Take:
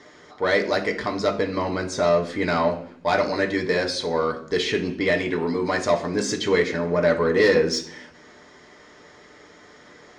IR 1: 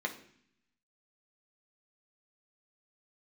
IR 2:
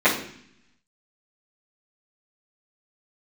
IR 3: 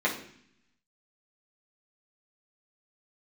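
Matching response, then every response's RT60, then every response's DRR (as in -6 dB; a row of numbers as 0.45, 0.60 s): 1; 0.60, 0.60, 0.60 s; 1.5, -15.5, -5.5 dB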